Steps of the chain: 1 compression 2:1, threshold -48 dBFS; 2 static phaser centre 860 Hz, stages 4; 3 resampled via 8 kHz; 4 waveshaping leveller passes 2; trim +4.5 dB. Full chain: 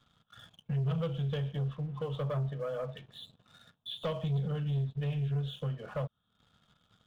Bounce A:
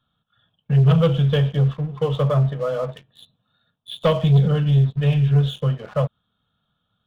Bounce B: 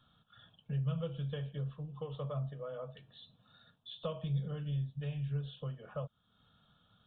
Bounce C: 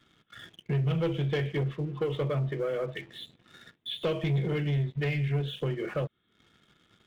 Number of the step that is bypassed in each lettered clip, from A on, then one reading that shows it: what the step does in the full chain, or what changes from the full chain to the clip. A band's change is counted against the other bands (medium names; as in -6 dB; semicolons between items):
1, mean gain reduction 12.0 dB; 4, crest factor change +5.0 dB; 2, 2 kHz band +7.5 dB